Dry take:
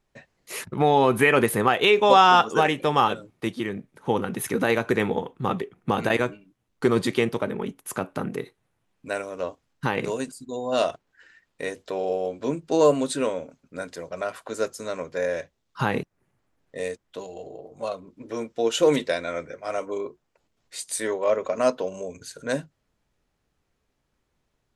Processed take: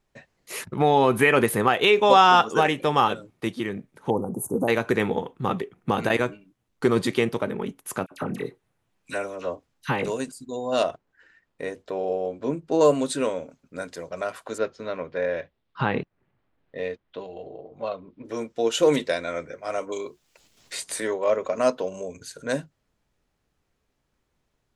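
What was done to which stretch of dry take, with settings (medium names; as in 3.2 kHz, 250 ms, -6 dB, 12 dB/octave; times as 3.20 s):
4.10–4.68 s: inverse Chebyshev band-stop 1.9–4 kHz, stop band 60 dB
8.06–10.06 s: phase dispersion lows, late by 54 ms, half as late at 1.5 kHz
10.83–12.81 s: treble shelf 2.5 kHz -9.5 dB
14.58–18.25 s: low-pass 3.9 kHz 24 dB/octave
19.92–21.02 s: three bands compressed up and down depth 70%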